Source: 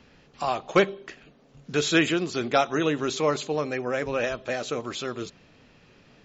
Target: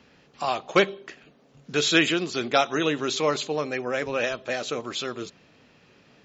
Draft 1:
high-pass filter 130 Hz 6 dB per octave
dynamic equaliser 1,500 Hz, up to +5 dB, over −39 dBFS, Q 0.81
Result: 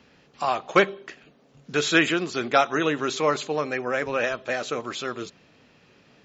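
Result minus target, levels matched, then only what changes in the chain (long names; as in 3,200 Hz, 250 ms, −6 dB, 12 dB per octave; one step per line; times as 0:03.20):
4,000 Hz band −4.0 dB
change: dynamic equaliser 3,700 Hz, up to +5 dB, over −39 dBFS, Q 0.81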